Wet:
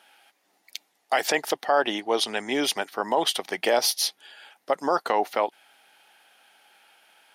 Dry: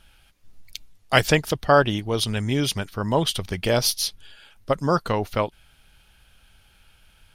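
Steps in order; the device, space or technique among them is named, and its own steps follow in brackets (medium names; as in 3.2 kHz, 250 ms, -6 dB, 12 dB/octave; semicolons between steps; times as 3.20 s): laptop speaker (high-pass 290 Hz 24 dB/octave; peaking EQ 780 Hz +10.5 dB 0.57 oct; peaking EQ 1.9 kHz +6 dB 0.39 oct; peak limiter -11 dBFS, peak gain reduction 13 dB); 1.90–2.55 s: low-pass 10 kHz 12 dB/octave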